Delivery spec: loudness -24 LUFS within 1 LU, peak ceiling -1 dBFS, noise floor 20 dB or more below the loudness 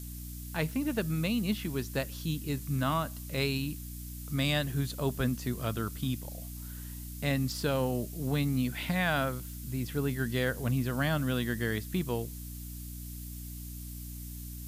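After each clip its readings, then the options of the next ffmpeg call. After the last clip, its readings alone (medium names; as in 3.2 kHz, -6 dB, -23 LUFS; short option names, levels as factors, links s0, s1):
hum 60 Hz; highest harmonic 300 Hz; hum level -40 dBFS; noise floor -42 dBFS; noise floor target -53 dBFS; loudness -33.0 LUFS; peak level -16.0 dBFS; loudness target -24.0 LUFS
-> -af "bandreject=f=60:t=h:w=6,bandreject=f=120:t=h:w=6,bandreject=f=180:t=h:w=6,bandreject=f=240:t=h:w=6,bandreject=f=300:t=h:w=6"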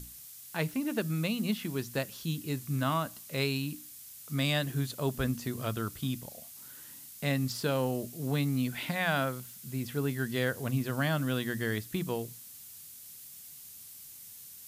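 hum not found; noise floor -49 dBFS; noise floor target -53 dBFS
-> -af "afftdn=nr=6:nf=-49"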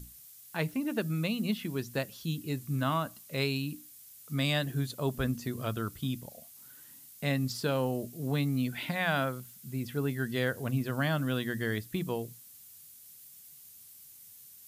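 noise floor -53 dBFS; loudness -32.5 LUFS; peak level -16.0 dBFS; loudness target -24.0 LUFS
-> -af "volume=2.66"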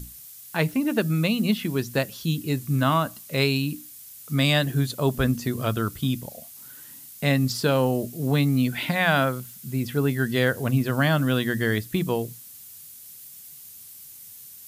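loudness -24.0 LUFS; peak level -7.5 dBFS; noise floor -45 dBFS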